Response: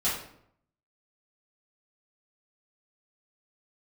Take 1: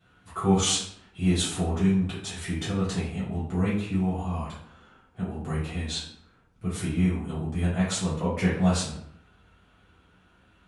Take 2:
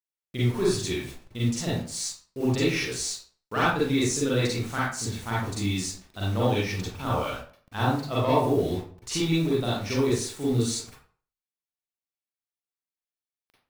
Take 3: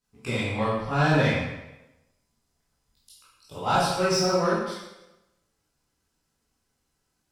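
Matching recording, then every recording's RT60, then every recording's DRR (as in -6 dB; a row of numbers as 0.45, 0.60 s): 1; 0.70, 0.45, 0.95 s; -11.5, -8.5, -10.0 dB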